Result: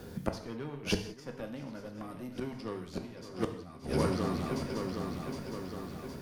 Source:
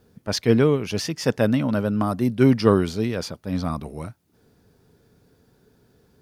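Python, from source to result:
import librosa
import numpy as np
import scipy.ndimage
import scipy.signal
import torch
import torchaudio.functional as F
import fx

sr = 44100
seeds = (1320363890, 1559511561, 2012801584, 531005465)

p1 = fx.cheby_harmonics(x, sr, harmonics=(2, 8), levels_db=(-35, -22), full_scale_db=-2.0)
p2 = p1 + fx.echo_swing(p1, sr, ms=764, ratio=3, feedback_pct=46, wet_db=-14, dry=0)
p3 = fx.gate_flip(p2, sr, shuts_db=-19.0, range_db=-30)
p4 = fx.rev_gated(p3, sr, seeds[0], gate_ms=210, shape='falling', drr_db=4.5)
p5 = fx.band_squash(p4, sr, depth_pct=40)
y = F.gain(torch.from_numpy(p5), 5.5).numpy()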